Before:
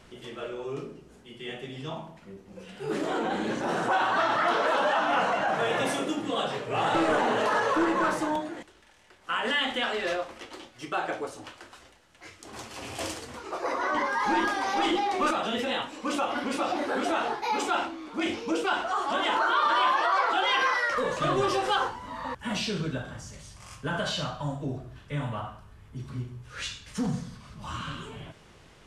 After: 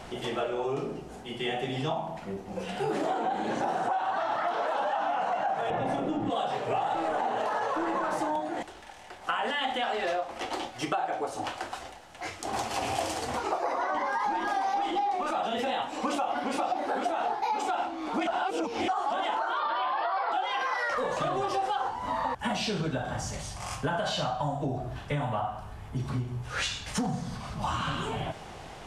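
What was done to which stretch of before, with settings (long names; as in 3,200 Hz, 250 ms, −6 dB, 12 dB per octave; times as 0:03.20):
0:05.70–0:06.30: RIAA equalisation playback
0:18.27–0:18.88: reverse
0:19.60–0:20.32: linear-phase brick-wall low-pass 5,400 Hz
whole clip: brickwall limiter −20.5 dBFS; parametric band 760 Hz +12 dB 0.52 octaves; downward compressor 8 to 1, threshold −35 dBFS; level +8 dB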